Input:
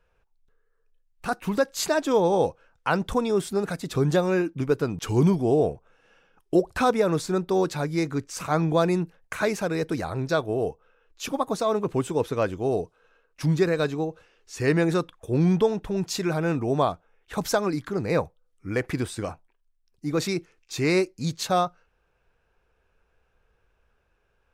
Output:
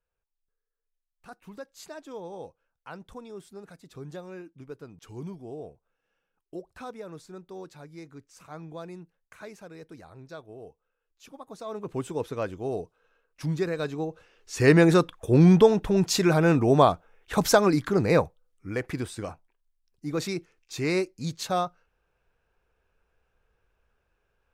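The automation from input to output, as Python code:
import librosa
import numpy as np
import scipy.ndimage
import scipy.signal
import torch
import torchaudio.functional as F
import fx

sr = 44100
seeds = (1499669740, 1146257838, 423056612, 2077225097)

y = fx.gain(x, sr, db=fx.line((11.41, -18.5), (11.99, -6.0), (13.81, -6.0), (14.64, 4.5), (18.0, 4.5), (18.73, -4.0)))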